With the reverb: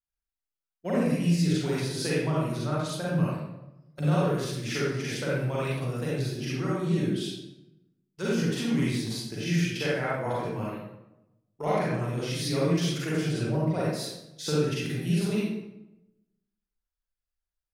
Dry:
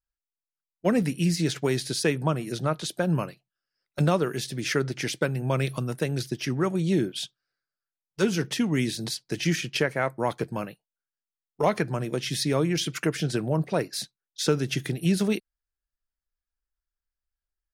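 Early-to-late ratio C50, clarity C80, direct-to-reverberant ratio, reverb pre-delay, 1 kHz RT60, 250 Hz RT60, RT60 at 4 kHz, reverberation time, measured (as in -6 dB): -3.5 dB, 1.0 dB, -7.5 dB, 36 ms, 0.90 s, 1.1 s, 0.60 s, 0.95 s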